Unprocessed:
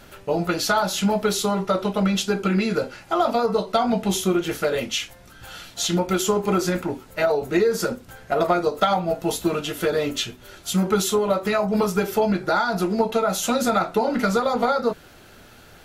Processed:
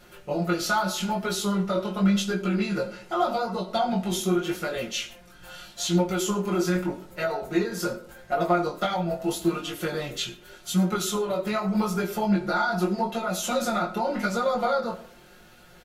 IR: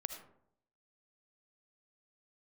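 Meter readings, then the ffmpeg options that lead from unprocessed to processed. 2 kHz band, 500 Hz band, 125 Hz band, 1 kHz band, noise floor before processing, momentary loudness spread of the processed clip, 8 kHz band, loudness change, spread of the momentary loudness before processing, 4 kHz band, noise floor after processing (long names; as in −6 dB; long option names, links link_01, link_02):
−3.0 dB, −6.0 dB, −1.5 dB, −4.0 dB, −48 dBFS, 7 LU, −4.5 dB, −4.0 dB, 6 LU, −4.0 dB, −51 dBFS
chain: -filter_complex "[0:a]aecho=1:1:5.6:0.82,flanger=delay=17:depth=6.3:speed=0.83,asplit=2[link_01][link_02];[1:a]atrim=start_sample=2205[link_03];[link_02][link_03]afir=irnorm=-1:irlink=0,volume=-2dB[link_04];[link_01][link_04]amix=inputs=2:normalize=0,volume=-8dB"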